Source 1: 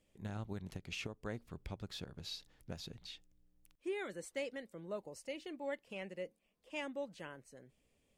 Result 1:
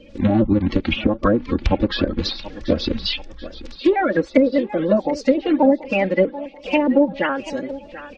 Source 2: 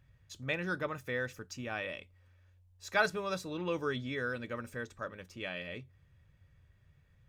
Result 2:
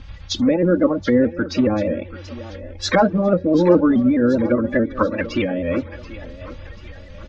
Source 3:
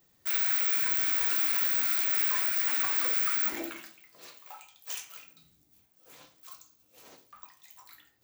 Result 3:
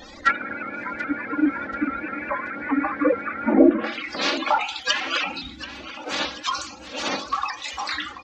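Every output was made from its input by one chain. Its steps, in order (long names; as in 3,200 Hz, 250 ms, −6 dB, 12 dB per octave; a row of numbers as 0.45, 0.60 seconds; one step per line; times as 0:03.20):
spectral magnitudes quantised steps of 30 dB
low-pass filter 5,300 Hz 24 dB per octave
comb filter 3.6 ms, depth 100%
in parallel at −1 dB: downward compressor 4 to 1, threshold −45 dBFS
on the sum: treble cut that deepens with the level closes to 480 Hz, closed at −31.5 dBFS
feedback echo with a high-pass in the loop 734 ms, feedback 51%, high-pass 330 Hz, level −14 dB
pitch modulation by a square or saw wave saw up 4.8 Hz, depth 100 cents
normalise the peak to −2 dBFS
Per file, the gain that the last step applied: +22.0, +20.5, +22.0 decibels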